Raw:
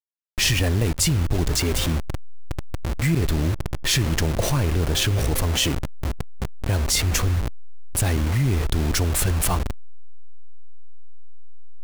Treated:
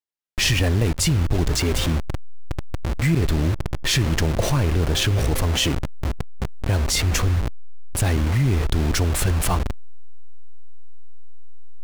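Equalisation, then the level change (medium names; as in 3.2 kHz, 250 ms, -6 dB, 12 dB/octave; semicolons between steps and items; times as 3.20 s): treble shelf 7.4 kHz -6.5 dB; +1.5 dB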